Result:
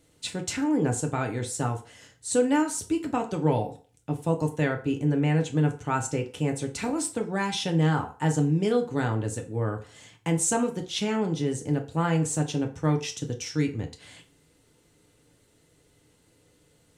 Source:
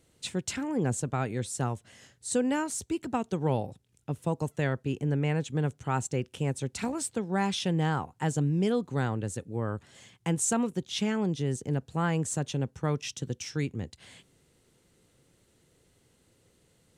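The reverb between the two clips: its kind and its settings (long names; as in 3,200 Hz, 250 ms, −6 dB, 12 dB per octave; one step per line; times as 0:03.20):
feedback delay network reverb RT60 0.4 s, low-frequency decay 0.7×, high-frequency decay 0.75×, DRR 2.5 dB
level +1.5 dB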